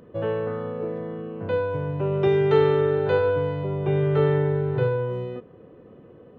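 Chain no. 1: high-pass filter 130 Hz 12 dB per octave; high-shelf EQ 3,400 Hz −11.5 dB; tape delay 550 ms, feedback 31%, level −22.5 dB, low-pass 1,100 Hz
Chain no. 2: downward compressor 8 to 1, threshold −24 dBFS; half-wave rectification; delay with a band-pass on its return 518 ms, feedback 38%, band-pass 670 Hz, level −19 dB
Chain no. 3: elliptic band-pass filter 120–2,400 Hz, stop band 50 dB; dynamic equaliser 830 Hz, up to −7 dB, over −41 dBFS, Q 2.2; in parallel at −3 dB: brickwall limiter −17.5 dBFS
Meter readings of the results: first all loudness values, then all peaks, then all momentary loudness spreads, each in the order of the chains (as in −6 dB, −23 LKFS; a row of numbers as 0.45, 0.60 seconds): −24.5, −33.5, −21.0 LKFS; −9.0, −16.5, −7.5 dBFS; 13, 15, 11 LU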